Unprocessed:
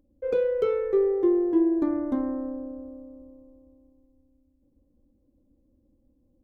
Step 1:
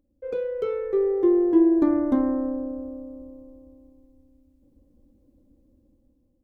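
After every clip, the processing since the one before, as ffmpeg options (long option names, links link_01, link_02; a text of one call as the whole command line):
ffmpeg -i in.wav -af "dynaudnorm=framelen=480:gausssize=5:maxgain=11dB,volume=-4.5dB" out.wav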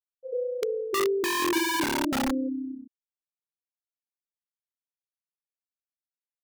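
ffmpeg -i in.wav -filter_complex "[0:a]afftfilt=real='re*gte(hypot(re,im),0.251)':imag='im*gte(hypot(re,im),0.251)':win_size=1024:overlap=0.75,highshelf=frequency=2200:gain=-9,acrossover=split=190|470[link_01][link_02][link_03];[link_02]aeval=exprs='(mod(13.3*val(0)+1,2)-1)/13.3':channel_layout=same[link_04];[link_01][link_04][link_03]amix=inputs=3:normalize=0,volume=-1dB" out.wav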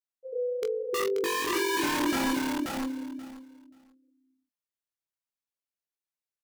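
ffmpeg -i in.wav -filter_complex "[0:a]flanger=delay=18:depth=2.6:speed=0.8,asplit=2[link_01][link_02];[link_02]adelay=24,volume=-13.5dB[link_03];[link_01][link_03]amix=inputs=2:normalize=0,aecho=1:1:532|1064|1596:0.708|0.113|0.0181" out.wav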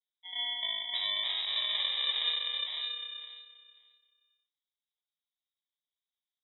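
ffmpeg -i in.wav -af "acrusher=samples=36:mix=1:aa=0.000001,lowpass=frequency=3300:width_type=q:width=0.5098,lowpass=frequency=3300:width_type=q:width=0.6013,lowpass=frequency=3300:width_type=q:width=0.9,lowpass=frequency=3300:width_type=q:width=2.563,afreqshift=-3900,flanger=delay=2.6:depth=2.2:regen=-73:speed=0.67:shape=triangular" out.wav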